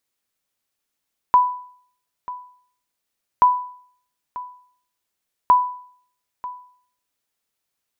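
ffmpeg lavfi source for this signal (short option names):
-f lavfi -i "aevalsrc='0.473*(sin(2*PI*993*mod(t,2.08))*exp(-6.91*mod(t,2.08)/0.56)+0.133*sin(2*PI*993*max(mod(t,2.08)-0.94,0))*exp(-6.91*max(mod(t,2.08)-0.94,0)/0.56))':d=6.24:s=44100"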